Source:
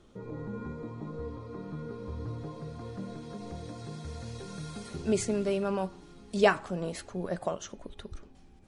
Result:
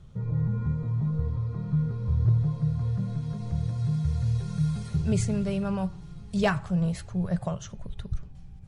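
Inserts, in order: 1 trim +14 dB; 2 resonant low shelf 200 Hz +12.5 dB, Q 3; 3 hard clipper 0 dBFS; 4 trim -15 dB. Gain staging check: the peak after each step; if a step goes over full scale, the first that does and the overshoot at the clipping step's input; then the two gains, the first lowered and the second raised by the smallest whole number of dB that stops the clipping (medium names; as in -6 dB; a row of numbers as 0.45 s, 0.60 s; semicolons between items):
+4.0 dBFS, +4.0 dBFS, 0.0 dBFS, -15.0 dBFS; step 1, 4.0 dB; step 1 +10 dB, step 4 -11 dB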